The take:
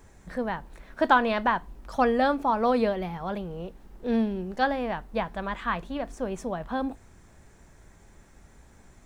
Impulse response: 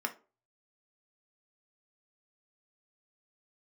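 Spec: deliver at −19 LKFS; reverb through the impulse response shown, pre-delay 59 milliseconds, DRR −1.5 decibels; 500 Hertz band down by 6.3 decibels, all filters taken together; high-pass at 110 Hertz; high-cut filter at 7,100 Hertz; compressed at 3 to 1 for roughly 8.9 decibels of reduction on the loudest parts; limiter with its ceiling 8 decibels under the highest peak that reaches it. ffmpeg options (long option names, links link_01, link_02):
-filter_complex "[0:a]highpass=110,lowpass=7100,equalizer=frequency=500:width_type=o:gain=-7.5,acompressor=threshold=-28dB:ratio=3,alimiter=level_in=0.5dB:limit=-24dB:level=0:latency=1,volume=-0.5dB,asplit=2[link_01][link_02];[1:a]atrim=start_sample=2205,adelay=59[link_03];[link_02][link_03]afir=irnorm=-1:irlink=0,volume=-2.5dB[link_04];[link_01][link_04]amix=inputs=2:normalize=0,volume=13dB"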